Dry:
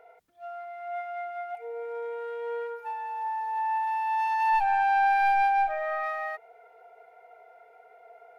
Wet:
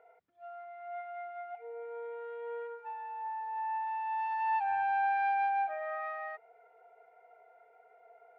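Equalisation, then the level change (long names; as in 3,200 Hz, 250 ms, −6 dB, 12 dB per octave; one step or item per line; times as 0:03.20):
high-pass filter 73 Hz
low-pass filter 2,700 Hz 12 dB per octave
−7.0 dB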